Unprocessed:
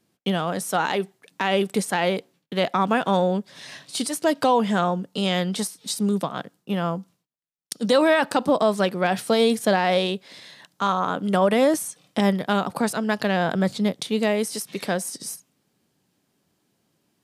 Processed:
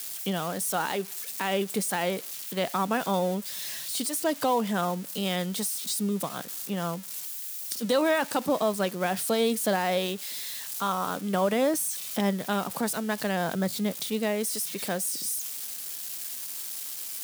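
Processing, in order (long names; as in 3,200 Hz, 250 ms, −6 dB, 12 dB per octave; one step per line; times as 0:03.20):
spike at every zero crossing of −22 dBFS
level −6 dB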